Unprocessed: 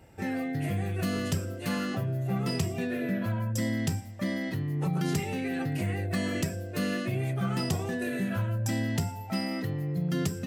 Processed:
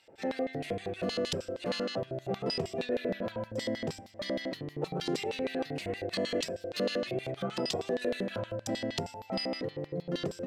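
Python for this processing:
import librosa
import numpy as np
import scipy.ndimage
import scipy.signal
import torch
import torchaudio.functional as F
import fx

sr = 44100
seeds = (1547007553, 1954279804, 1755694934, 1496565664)

y = fx.filter_lfo_bandpass(x, sr, shape='square', hz=6.4, low_hz=510.0, high_hz=3900.0, q=2.5)
y = y * 10.0 ** (9.0 / 20.0)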